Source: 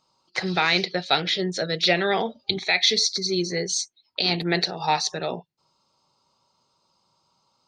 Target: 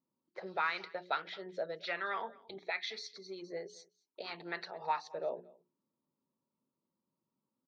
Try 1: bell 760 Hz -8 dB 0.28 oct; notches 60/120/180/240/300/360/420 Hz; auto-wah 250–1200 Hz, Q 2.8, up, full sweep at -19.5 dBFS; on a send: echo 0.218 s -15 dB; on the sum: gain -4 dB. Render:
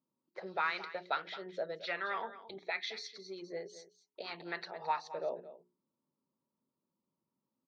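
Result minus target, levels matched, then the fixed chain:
echo-to-direct +8.5 dB
bell 760 Hz -8 dB 0.28 oct; notches 60/120/180/240/300/360/420 Hz; auto-wah 250–1200 Hz, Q 2.8, up, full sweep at -19.5 dBFS; on a send: echo 0.218 s -23.5 dB; on the sum: gain -4 dB

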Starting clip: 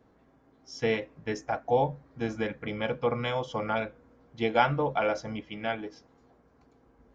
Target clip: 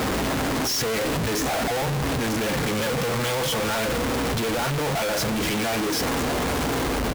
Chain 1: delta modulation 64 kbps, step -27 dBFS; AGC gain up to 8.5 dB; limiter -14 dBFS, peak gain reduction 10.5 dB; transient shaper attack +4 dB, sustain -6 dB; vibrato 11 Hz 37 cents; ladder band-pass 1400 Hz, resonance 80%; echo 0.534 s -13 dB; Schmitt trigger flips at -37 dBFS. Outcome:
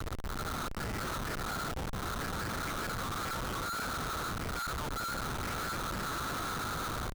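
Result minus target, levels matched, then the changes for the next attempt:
1000 Hz band +3.5 dB
remove: ladder band-pass 1400 Hz, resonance 80%

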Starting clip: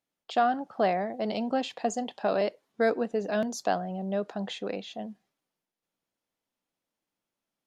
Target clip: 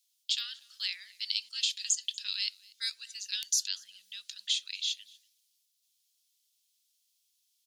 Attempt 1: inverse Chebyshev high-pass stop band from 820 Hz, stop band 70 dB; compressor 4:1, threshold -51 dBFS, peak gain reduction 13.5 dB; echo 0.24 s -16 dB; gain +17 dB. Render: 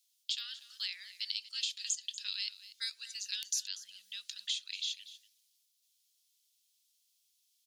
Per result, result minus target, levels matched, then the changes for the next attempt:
compressor: peak gain reduction +6.5 dB; echo-to-direct +9 dB
change: compressor 4:1, threshold -42.5 dBFS, peak gain reduction 7 dB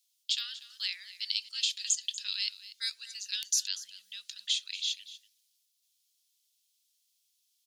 echo-to-direct +9 dB
change: echo 0.24 s -25 dB

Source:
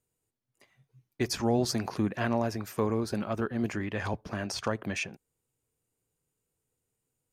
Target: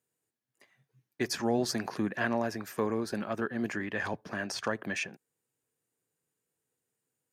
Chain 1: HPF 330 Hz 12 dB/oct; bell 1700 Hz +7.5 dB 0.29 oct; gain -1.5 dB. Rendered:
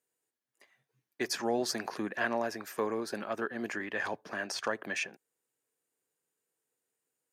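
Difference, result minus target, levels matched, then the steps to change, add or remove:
125 Hz band -8.5 dB
change: HPF 160 Hz 12 dB/oct

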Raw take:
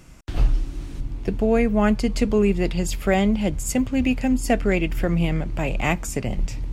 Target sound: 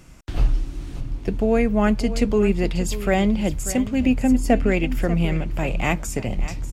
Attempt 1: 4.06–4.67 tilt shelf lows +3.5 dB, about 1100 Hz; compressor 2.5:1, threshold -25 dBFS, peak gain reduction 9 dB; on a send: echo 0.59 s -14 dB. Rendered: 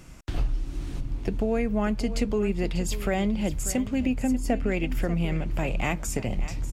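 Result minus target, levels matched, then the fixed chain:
compressor: peak gain reduction +9 dB
4.06–4.67 tilt shelf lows +3.5 dB, about 1100 Hz; on a send: echo 0.59 s -14 dB

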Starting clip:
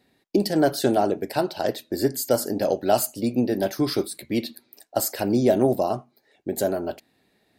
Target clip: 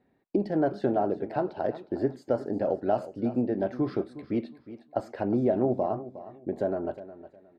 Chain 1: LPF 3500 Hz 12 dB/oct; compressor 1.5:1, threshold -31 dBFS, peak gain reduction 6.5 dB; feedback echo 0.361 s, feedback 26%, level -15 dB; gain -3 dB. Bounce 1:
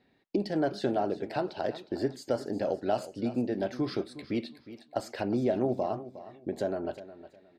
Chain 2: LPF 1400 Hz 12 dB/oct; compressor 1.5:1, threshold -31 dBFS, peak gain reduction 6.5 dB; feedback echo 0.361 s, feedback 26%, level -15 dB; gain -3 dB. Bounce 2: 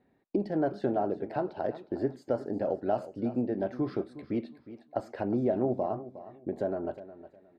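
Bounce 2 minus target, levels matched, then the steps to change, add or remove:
compressor: peak gain reduction +3 dB
change: compressor 1.5:1, threshold -22 dBFS, peak gain reduction 3.5 dB

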